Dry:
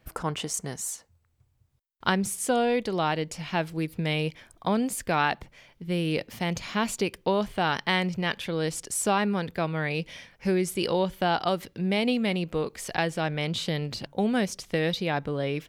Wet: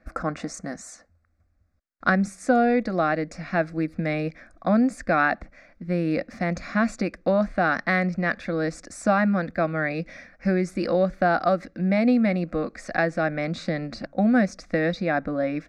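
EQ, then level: distance through air 130 m; treble shelf 9.5 kHz -7 dB; static phaser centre 620 Hz, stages 8; +7.5 dB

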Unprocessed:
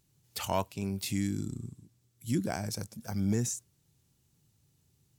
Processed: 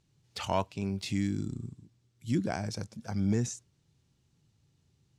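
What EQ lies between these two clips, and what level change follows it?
low-pass 5.4 kHz 12 dB/octave; +1.0 dB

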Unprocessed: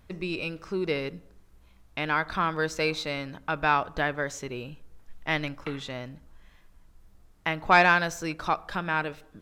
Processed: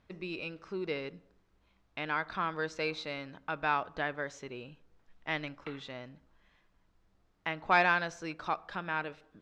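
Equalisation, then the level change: low-pass 5 kHz 12 dB/octave; bass shelf 99 Hz -11 dB; -6.5 dB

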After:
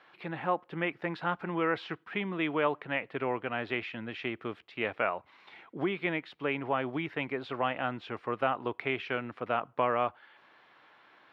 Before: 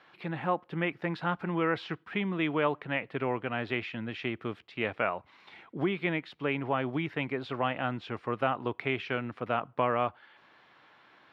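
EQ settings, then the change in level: tone controls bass -6 dB, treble -4 dB; 0.0 dB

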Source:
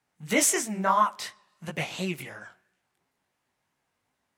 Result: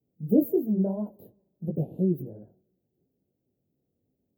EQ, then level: high-pass 56 Hz; inverse Chebyshev band-stop 1.1–9.4 kHz, stop band 50 dB; +7.5 dB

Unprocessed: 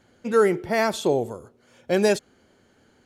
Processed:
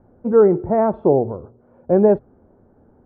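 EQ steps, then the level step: low-pass 1 kHz 24 dB/octave; bass shelf 81 Hz +10.5 dB; hum notches 60/120 Hz; +6.0 dB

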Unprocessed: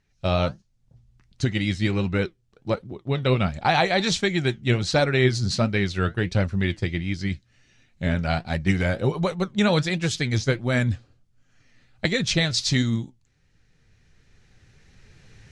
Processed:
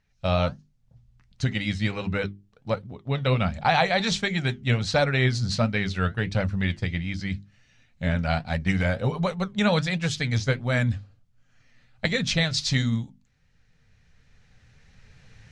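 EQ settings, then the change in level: peaking EQ 350 Hz -13 dB 0.36 oct; treble shelf 6.5 kHz -7 dB; hum notches 50/100/150/200/250/300/350/400 Hz; 0.0 dB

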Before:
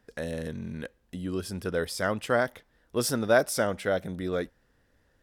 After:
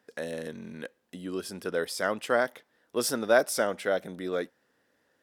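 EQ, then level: high-pass 250 Hz 12 dB/octave; 0.0 dB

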